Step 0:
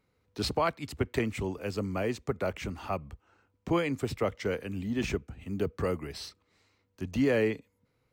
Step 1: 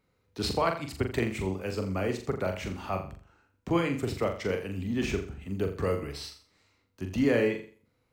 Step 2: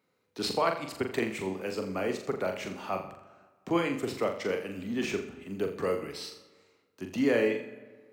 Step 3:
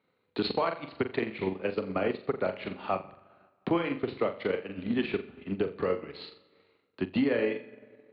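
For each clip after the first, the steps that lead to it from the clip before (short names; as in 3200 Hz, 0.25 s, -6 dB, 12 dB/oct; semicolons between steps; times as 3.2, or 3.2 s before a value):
flutter echo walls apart 7.2 m, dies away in 0.42 s
HPF 210 Hz 12 dB/oct; reverb RT60 1.6 s, pre-delay 25 ms, DRR 14.5 dB
steep low-pass 4400 Hz 96 dB/oct; transient shaper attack +10 dB, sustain -6 dB; limiter -17.5 dBFS, peak gain reduction 9.5 dB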